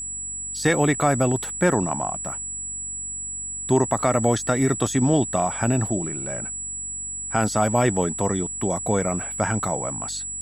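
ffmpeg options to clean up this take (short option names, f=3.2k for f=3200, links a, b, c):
-af "bandreject=f=47.1:t=h:w=4,bandreject=f=94.2:t=h:w=4,bandreject=f=141.3:t=h:w=4,bandreject=f=188.4:t=h:w=4,bandreject=f=235.5:t=h:w=4,bandreject=f=282.6:t=h:w=4,bandreject=f=7.8k:w=30"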